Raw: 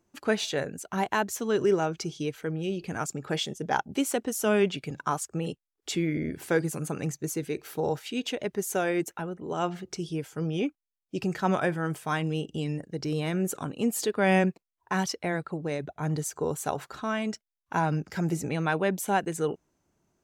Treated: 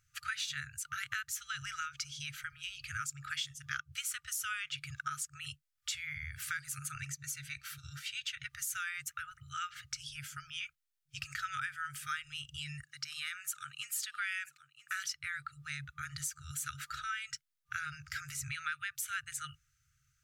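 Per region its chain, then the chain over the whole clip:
6.95–8.50 s: treble shelf 9.4 kHz -7 dB + comb of notches 420 Hz
12.83–15.11 s: high-pass 400 Hz + delay 978 ms -18.5 dB
whole clip: FFT band-reject 140–1200 Hz; dynamic bell 130 Hz, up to -7 dB, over -58 dBFS, Q 3.8; compression 3:1, threshold -40 dBFS; trim +3 dB

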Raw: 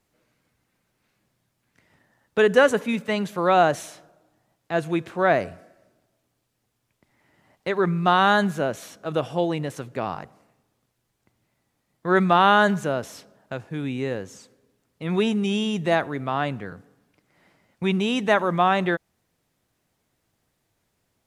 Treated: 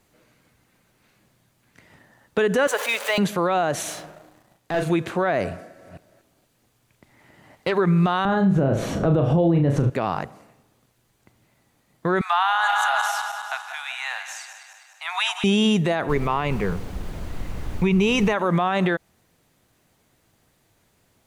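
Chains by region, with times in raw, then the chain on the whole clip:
2.67–3.18 s: jump at every zero crossing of -33 dBFS + high-pass 560 Hz 24 dB/octave
3.82–4.90 s: compression 1.5:1, threshold -60 dBFS + waveshaping leveller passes 2 + doubling 39 ms -4 dB
5.50–7.73 s: chunks repeated in reverse 238 ms, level -8 dB + loudspeaker Doppler distortion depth 0.13 ms
8.25–9.90 s: upward compressor, threshold -26 dBFS + tilt EQ -4.5 dB/octave + flutter echo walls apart 6.2 m, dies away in 0.3 s
12.21–15.44 s: backward echo that repeats 101 ms, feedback 74%, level -9.5 dB + steep high-pass 740 Hz 72 dB/octave
16.08–18.32 s: rippled EQ curve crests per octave 0.8, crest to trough 9 dB + added noise brown -37 dBFS
whole clip: band-stop 5.3 kHz, Q 23; compression, threshold -20 dBFS; peak limiter -21 dBFS; trim +9 dB

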